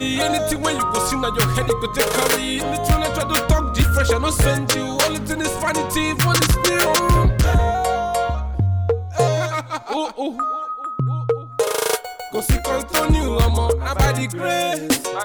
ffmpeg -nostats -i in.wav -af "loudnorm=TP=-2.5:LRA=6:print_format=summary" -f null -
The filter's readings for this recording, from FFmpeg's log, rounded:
Input Integrated:    -19.6 LUFS
Input True Peak:      -4.1 dBTP
Input LRA:             4.2 LU
Input Threshold:     -29.6 LUFS